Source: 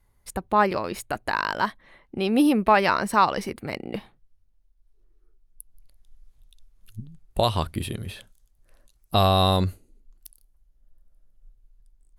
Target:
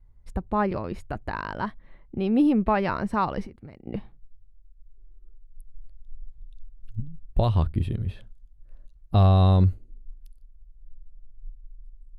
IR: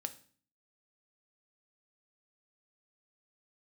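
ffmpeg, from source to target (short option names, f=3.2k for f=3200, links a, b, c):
-filter_complex "[0:a]asettb=1/sr,asplit=3[a][b][c];[a]atrim=end=3.464[d];[b]atrim=start=3.46:end=3.87,asetpts=PTS-STARTPTS,afade=t=in:d=0.004:c=qsin,afade=t=out:st=0.406:d=0.004:c=qsin,acompressor=threshold=-40dB:ratio=12[e];[c]atrim=start=3.866[f];[d][e]acrossfade=d=0.004:c1=hsin:c2=qsin[g];[g][f]acrossfade=d=0.004:c1=qsin:c2=hsin,aemphasis=mode=reproduction:type=riaa,volume=-6.5dB"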